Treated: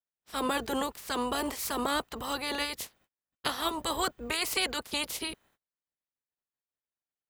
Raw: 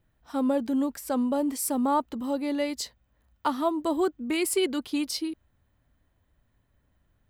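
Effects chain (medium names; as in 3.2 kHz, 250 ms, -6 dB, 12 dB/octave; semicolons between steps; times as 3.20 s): spectral peaks clipped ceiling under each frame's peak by 28 dB; gate -59 dBFS, range -31 dB; trim -4.5 dB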